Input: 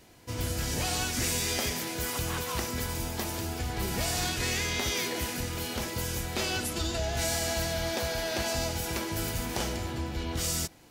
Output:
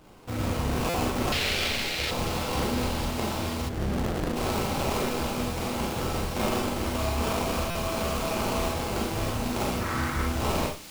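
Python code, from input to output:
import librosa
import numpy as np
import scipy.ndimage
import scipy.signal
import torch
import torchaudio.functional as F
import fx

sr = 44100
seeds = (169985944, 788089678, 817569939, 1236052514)

y = fx.sample_hold(x, sr, seeds[0], rate_hz=1800.0, jitter_pct=20)
y = fx.band_shelf(y, sr, hz=1500.0, db=10.0, octaves=1.3, at=(9.81, 10.23))
y = fx.rev_schroeder(y, sr, rt60_s=0.32, comb_ms=29, drr_db=-1.0)
y = fx.rider(y, sr, range_db=3, speed_s=2.0)
y = fx.graphic_eq_10(y, sr, hz=(125, 250, 1000, 2000, 4000), db=(-4, -8, -10, 10, 11), at=(1.32, 2.11))
y = fx.echo_wet_highpass(y, sr, ms=473, feedback_pct=85, hz=3500.0, wet_db=-9.0)
y = fx.buffer_glitch(y, sr, at_s=(0.89, 7.7), block=256, repeats=8)
y = fx.running_max(y, sr, window=33, at=(3.68, 4.35), fade=0.02)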